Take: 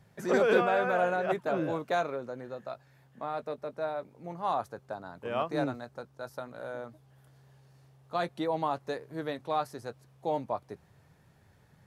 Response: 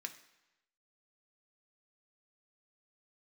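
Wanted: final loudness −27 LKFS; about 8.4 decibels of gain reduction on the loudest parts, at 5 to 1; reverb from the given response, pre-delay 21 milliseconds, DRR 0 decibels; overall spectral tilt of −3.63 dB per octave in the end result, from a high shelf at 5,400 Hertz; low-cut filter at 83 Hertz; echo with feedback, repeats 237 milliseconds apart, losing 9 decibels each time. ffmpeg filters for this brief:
-filter_complex "[0:a]highpass=83,highshelf=frequency=5400:gain=5,acompressor=threshold=-29dB:ratio=5,aecho=1:1:237|474|711|948:0.355|0.124|0.0435|0.0152,asplit=2[link_01][link_02];[1:a]atrim=start_sample=2205,adelay=21[link_03];[link_02][link_03]afir=irnorm=-1:irlink=0,volume=2dB[link_04];[link_01][link_04]amix=inputs=2:normalize=0,volume=7.5dB"

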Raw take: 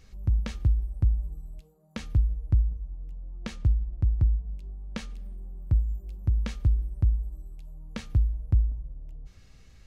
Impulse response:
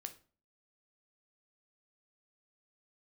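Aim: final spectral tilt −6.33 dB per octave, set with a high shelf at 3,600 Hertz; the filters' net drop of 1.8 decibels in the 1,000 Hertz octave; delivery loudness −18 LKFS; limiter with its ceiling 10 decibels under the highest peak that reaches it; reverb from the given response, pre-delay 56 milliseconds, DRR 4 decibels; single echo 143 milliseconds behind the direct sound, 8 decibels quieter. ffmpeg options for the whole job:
-filter_complex "[0:a]equalizer=frequency=1000:width_type=o:gain=-3,highshelf=frequency=3600:gain=6,alimiter=limit=-22.5dB:level=0:latency=1,aecho=1:1:143:0.398,asplit=2[link_01][link_02];[1:a]atrim=start_sample=2205,adelay=56[link_03];[link_02][link_03]afir=irnorm=-1:irlink=0,volume=0dB[link_04];[link_01][link_04]amix=inputs=2:normalize=0,volume=12.5dB"

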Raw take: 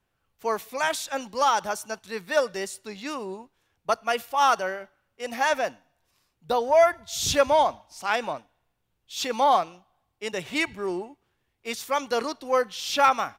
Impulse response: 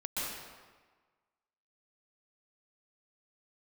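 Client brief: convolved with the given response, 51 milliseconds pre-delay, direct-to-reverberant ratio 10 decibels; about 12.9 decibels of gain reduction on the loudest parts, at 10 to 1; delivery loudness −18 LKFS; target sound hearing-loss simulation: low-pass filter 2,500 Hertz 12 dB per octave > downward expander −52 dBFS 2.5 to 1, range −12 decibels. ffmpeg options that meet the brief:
-filter_complex "[0:a]acompressor=threshold=-27dB:ratio=10,asplit=2[link_01][link_02];[1:a]atrim=start_sample=2205,adelay=51[link_03];[link_02][link_03]afir=irnorm=-1:irlink=0,volume=-14.5dB[link_04];[link_01][link_04]amix=inputs=2:normalize=0,lowpass=2500,agate=range=-12dB:threshold=-52dB:ratio=2.5,volume=16dB"

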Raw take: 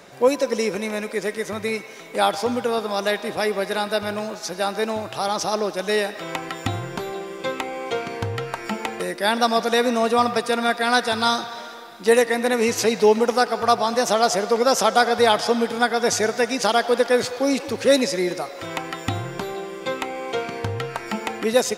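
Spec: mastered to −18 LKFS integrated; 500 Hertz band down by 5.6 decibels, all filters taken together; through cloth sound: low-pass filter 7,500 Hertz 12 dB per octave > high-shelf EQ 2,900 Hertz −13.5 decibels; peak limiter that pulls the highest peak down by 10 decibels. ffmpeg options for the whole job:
ffmpeg -i in.wav -af "equalizer=frequency=500:width_type=o:gain=-6,alimiter=limit=-16dB:level=0:latency=1,lowpass=7500,highshelf=frequency=2900:gain=-13.5,volume=12dB" out.wav

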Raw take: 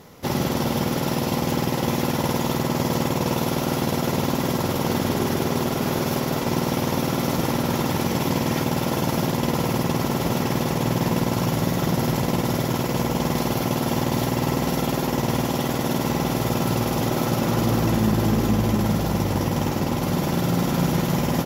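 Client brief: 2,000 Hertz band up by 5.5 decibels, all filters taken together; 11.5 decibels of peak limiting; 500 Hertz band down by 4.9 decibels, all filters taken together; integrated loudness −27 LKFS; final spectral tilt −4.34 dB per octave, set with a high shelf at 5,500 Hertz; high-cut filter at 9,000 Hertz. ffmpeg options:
ffmpeg -i in.wav -af "lowpass=9000,equalizer=frequency=500:width_type=o:gain=-7,equalizer=frequency=2000:width_type=o:gain=6,highshelf=frequency=5500:gain=7.5,volume=2.5dB,alimiter=limit=-18dB:level=0:latency=1" out.wav

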